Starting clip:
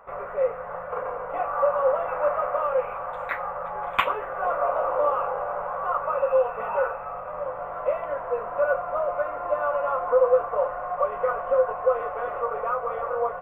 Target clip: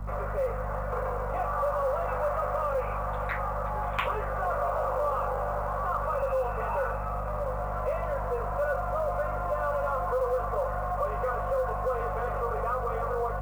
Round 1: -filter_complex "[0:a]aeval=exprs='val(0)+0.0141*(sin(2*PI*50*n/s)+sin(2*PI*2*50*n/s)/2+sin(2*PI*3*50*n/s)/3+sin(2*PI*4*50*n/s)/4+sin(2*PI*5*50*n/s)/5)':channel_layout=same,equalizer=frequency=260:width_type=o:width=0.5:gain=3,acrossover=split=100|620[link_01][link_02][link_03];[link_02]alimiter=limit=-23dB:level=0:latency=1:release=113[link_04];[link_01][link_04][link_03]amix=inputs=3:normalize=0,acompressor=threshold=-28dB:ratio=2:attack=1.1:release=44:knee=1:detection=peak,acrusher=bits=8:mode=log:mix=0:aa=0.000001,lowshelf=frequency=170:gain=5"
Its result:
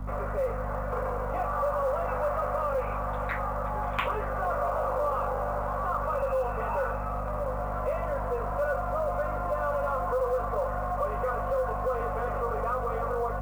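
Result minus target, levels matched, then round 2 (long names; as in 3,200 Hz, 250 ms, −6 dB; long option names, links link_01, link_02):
250 Hz band +3.5 dB
-filter_complex "[0:a]aeval=exprs='val(0)+0.0141*(sin(2*PI*50*n/s)+sin(2*PI*2*50*n/s)/2+sin(2*PI*3*50*n/s)/3+sin(2*PI*4*50*n/s)/4+sin(2*PI*5*50*n/s)/5)':channel_layout=same,equalizer=frequency=260:width_type=o:width=0.5:gain=-6,acrossover=split=100|620[link_01][link_02][link_03];[link_02]alimiter=limit=-23dB:level=0:latency=1:release=113[link_04];[link_01][link_04][link_03]amix=inputs=3:normalize=0,acompressor=threshold=-28dB:ratio=2:attack=1.1:release=44:knee=1:detection=peak,acrusher=bits=8:mode=log:mix=0:aa=0.000001,lowshelf=frequency=170:gain=5"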